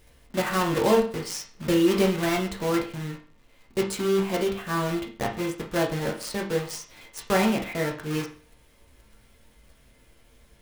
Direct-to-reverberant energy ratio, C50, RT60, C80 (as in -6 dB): -1.0 dB, 9.0 dB, 0.40 s, 14.5 dB